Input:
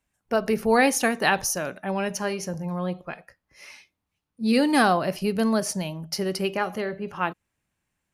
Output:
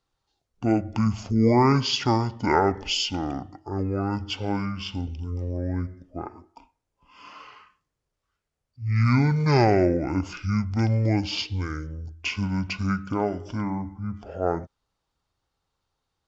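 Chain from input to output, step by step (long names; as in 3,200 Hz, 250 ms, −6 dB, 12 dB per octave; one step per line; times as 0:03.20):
wrong playback speed 15 ips tape played at 7.5 ips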